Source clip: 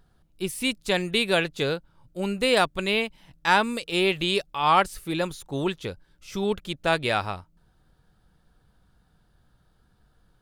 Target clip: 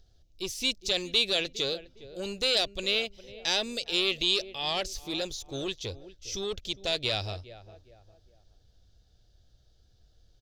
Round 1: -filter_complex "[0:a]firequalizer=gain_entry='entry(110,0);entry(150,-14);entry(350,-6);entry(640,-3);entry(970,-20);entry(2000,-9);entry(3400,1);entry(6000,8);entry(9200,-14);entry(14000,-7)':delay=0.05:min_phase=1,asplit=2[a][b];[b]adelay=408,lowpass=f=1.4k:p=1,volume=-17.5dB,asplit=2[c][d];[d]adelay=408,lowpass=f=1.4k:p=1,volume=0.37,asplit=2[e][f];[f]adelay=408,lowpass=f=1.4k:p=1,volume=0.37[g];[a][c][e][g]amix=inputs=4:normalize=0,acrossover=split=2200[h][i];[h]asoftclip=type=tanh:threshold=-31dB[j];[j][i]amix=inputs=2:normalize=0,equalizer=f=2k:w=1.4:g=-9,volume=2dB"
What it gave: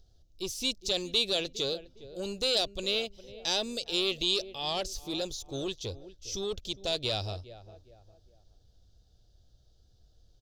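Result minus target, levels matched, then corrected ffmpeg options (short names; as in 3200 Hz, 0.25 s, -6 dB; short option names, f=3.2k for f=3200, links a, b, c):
2000 Hz band -4.0 dB
-filter_complex "[0:a]firequalizer=gain_entry='entry(110,0);entry(150,-14);entry(350,-6);entry(640,-3);entry(970,-20);entry(2000,-9);entry(3400,1);entry(6000,8);entry(9200,-14);entry(14000,-7)':delay=0.05:min_phase=1,asplit=2[a][b];[b]adelay=408,lowpass=f=1.4k:p=1,volume=-17.5dB,asplit=2[c][d];[d]adelay=408,lowpass=f=1.4k:p=1,volume=0.37,asplit=2[e][f];[f]adelay=408,lowpass=f=1.4k:p=1,volume=0.37[g];[a][c][e][g]amix=inputs=4:normalize=0,acrossover=split=2200[h][i];[h]asoftclip=type=tanh:threshold=-31dB[j];[j][i]amix=inputs=2:normalize=0,volume=2dB"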